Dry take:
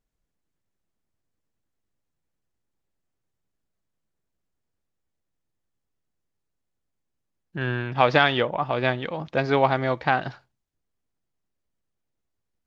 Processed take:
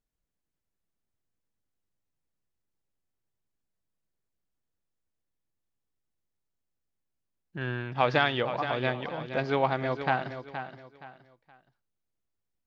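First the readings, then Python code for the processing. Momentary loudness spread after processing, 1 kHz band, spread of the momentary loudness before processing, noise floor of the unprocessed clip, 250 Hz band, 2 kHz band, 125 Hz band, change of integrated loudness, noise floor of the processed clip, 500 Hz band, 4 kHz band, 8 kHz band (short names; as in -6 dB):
16 LU, -5.5 dB, 11 LU, -80 dBFS, -5.5 dB, -5.5 dB, -5.5 dB, -6.0 dB, -83 dBFS, -5.5 dB, -5.5 dB, n/a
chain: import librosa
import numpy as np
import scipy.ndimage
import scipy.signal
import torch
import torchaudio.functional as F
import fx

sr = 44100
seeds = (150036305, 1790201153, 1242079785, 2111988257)

y = fx.echo_feedback(x, sr, ms=471, feedback_pct=30, wet_db=-10)
y = F.gain(torch.from_numpy(y), -6.0).numpy()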